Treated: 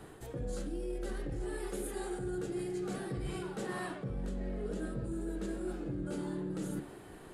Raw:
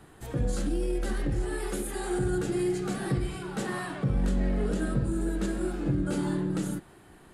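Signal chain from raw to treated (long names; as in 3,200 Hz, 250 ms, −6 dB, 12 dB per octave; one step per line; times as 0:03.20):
parametric band 460 Hz +6 dB 0.97 octaves
hum removal 71.42 Hz, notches 40
reversed playback
downward compressor 5 to 1, threshold −37 dBFS, peak gain reduction 14 dB
reversed playback
level +1 dB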